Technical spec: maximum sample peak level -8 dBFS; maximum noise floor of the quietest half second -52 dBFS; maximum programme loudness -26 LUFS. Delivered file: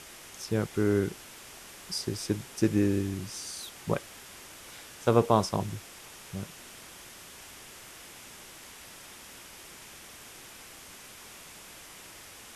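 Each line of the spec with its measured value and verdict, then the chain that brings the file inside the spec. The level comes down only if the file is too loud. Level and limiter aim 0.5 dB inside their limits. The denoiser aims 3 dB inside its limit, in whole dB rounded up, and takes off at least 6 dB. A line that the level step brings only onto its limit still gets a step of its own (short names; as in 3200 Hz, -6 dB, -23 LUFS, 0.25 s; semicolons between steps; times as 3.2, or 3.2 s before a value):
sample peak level -7.5 dBFS: fail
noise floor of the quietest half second -49 dBFS: fail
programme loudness -30.0 LUFS: OK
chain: denoiser 6 dB, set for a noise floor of -49 dBFS; limiter -8.5 dBFS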